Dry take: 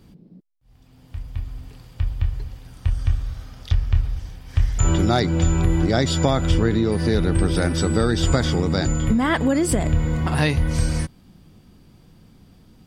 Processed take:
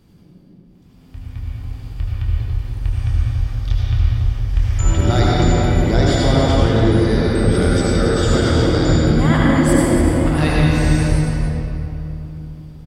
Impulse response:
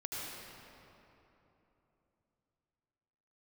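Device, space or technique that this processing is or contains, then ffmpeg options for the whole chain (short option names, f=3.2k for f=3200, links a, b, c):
cave: -filter_complex "[0:a]aecho=1:1:284:0.376[a];[1:a]atrim=start_sample=2205[b];[a][b]afir=irnorm=-1:irlink=0,volume=2dB"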